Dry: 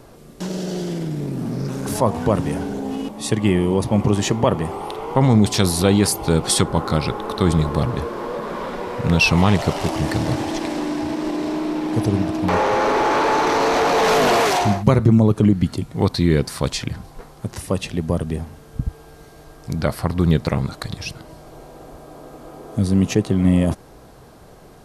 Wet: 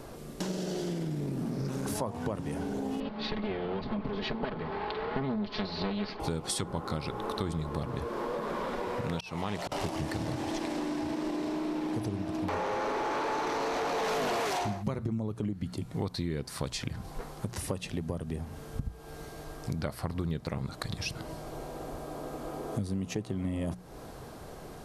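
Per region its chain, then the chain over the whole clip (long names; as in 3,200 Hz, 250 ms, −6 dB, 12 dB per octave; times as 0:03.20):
0:03.00–0:06.20: lower of the sound and its delayed copy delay 4.7 ms + elliptic low-pass filter 4,500 Hz, stop band 50 dB
0:09.02–0:09.72: low-shelf EQ 150 Hz −11 dB + volume swells 460 ms
whole clip: mains-hum notches 60/120/180 Hz; downward compressor 6 to 1, threshold −31 dBFS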